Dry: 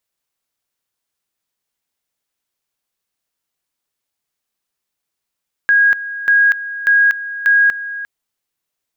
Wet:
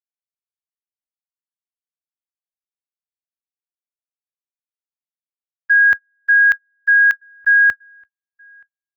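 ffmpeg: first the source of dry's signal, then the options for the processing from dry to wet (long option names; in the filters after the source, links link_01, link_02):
-f lavfi -i "aevalsrc='pow(10,(-8-14.5*gte(mod(t,0.59),0.24))/20)*sin(2*PI*1640*t)':duration=2.36:sample_rate=44100"
-filter_complex "[0:a]agate=range=-40dB:threshold=-14dB:ratio=16:detection=peak,equalizer=frequency=71:width=1:gain=9,asplit=2[link_01][link_02];[link_02]adelay=1516,volume=-27dB,highshelf=frequency=4000:gain=-34.1[link_03];[link_01][link_03]amix=inputs=2:normalize=0"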